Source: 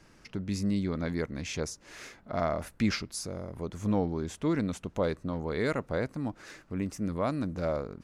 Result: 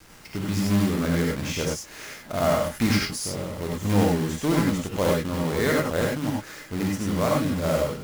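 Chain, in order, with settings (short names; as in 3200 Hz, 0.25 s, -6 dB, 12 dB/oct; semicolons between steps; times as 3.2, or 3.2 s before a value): companded quantiser 4-bit; non-linear reverb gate 0.12 s rising, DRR -2 dB; gain +3 dB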